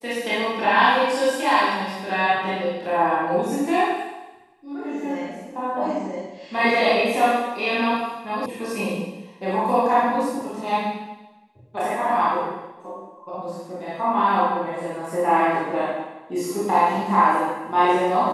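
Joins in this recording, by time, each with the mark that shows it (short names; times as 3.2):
8.46 sound cut off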